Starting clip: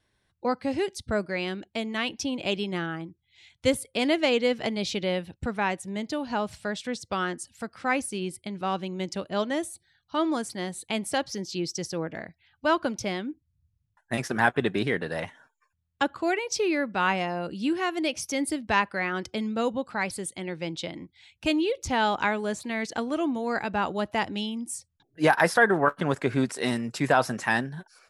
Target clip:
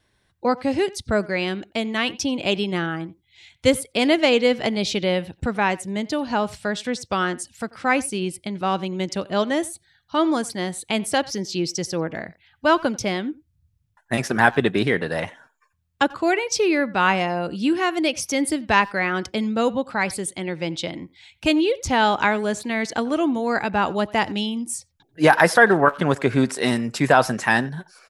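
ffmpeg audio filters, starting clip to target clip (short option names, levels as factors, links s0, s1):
-filter_complex "[0:a]asplit=2[s0][s1];[s1]adelay=90,highpass=300,lowpass=3400,asoftclip=type=hard:threshold=0.15,volume=0.0891[s2];[s0][s2]amix=inputs=2:normalize=0,volume=2"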